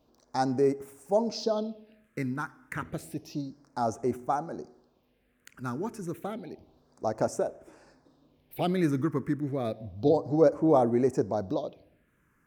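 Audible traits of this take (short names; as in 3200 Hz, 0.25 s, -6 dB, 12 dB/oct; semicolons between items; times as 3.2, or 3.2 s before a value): phasing stages 4, 0.3 Hz, lowest notch 650–4100 Hz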